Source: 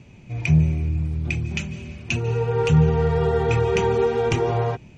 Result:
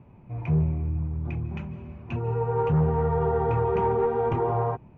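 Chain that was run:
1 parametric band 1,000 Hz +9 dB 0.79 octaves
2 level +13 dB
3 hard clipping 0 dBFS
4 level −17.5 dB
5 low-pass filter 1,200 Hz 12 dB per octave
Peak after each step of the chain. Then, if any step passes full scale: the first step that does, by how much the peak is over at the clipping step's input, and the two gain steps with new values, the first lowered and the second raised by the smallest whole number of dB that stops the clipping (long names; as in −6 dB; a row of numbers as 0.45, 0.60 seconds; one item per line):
−6.0, +7.0, 0.0, −17.5, −17.0 dBFS
step 2, 7.0 dB
step 2 +6 dB, step 4 −10.5 dB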